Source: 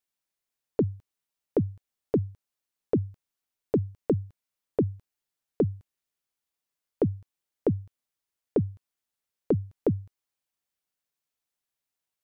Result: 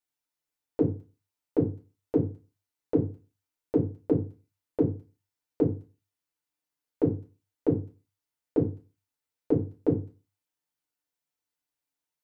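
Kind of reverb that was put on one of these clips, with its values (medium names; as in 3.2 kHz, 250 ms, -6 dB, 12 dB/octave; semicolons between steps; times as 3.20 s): FDN reverb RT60 0.33 s, low-frequency decay 1.05×, high-frequency decay 0.7×, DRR -3 dB; trim -6 dB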